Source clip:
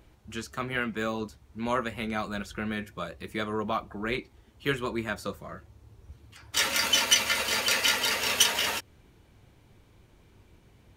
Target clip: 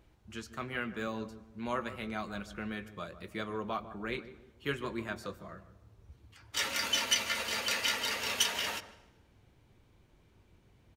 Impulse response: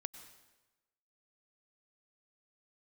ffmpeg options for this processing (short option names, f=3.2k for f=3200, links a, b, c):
-filter_complex "[0:a]asplit=2[a][b];[b]adelay=152,lowpass=f=880:p=1,volume=-12dB,asplit=2[c][d];[d]adelay=152,lowpass=f=880:p=1,volume=0.4,asplit=2[e][f];[f]adelay=152,lowpass=f=880:p=1,volume=0.4,asplit=2[g][h];[h]adelay=152,lowpass=f=880:p=1,volume=0.4[i];[a][c][e][g][i]amix=inputs=5:normalize=0,asplit=2[j][k];[1:a]atrim=start_sample=2205,lowpass=8.1k[l];[k][l]afir=irnorm=-1:irlink=0,volume=-6dB[m];[j][m]amix=inputs=2:normalize=0,volume=-9dB"